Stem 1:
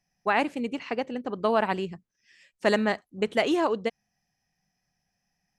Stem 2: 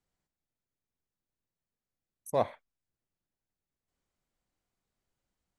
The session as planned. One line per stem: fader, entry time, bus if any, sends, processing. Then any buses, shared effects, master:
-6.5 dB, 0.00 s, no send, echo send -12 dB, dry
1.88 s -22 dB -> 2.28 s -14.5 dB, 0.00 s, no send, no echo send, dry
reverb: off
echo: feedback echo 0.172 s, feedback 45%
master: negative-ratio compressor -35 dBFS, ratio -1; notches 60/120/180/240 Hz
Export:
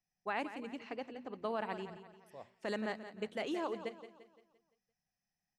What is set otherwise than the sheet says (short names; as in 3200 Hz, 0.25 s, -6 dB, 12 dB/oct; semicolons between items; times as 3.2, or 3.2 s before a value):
stem 1 -6.5 dB -> -13.5 dB; stem 2 -22.0 dB -> -31.5 dB